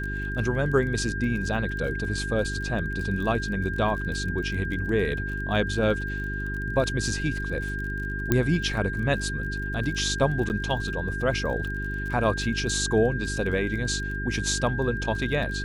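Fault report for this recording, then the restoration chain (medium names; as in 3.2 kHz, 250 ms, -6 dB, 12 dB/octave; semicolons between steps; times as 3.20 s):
crackle 27 per s -34 dBFS
hum 50 Hz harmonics 8 -32 dBFS
whine 1.6 kHz -32 dBFS
8.32 s: pop -8 dBFS
10.49–10.50 s: dropout 9.7 ms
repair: de-click; band-stop 1.6 kHz, Q 30; de-hum 50 Hz, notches 8; interpolate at 10.49 s, 9.7 ms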